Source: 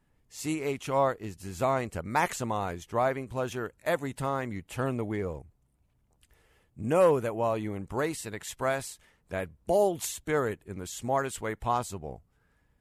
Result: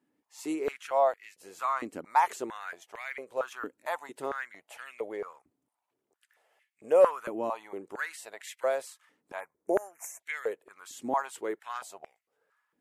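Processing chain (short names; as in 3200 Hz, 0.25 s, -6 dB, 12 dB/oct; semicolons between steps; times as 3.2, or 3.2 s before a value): 9.4–10.2 Chebyshev band-stop 2300–5900 Hz, order 3; stepped high-pass 4.4 Hz 280–2100 Hz; gain -6.5 dB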